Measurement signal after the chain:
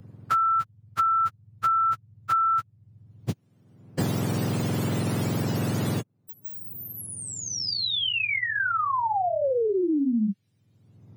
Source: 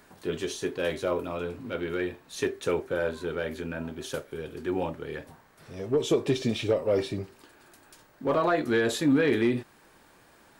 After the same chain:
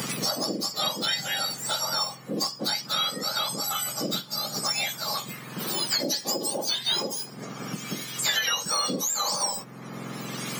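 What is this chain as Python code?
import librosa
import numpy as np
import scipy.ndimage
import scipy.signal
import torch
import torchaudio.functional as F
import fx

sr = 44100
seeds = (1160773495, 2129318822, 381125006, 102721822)

y = fx.octave_mirror(x, sr, pivot_hz=1400.0)
y = fx.band_squash(y, sr, depth_pct=100)
y = y * 10.0 ** (4.5 / 20.0)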